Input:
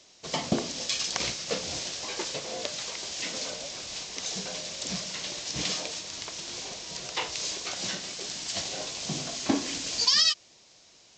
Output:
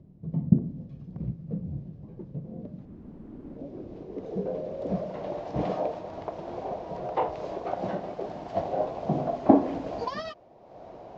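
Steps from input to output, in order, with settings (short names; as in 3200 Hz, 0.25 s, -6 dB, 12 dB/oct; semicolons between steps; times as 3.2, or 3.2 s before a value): 2.85–3.59 wrapped overs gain 33.5 dB; upward compressor, threshold -35 dBFS; low-pass sweep 160 Hz -> 710 Hz, 2.26–5.4; gain +6.5 dB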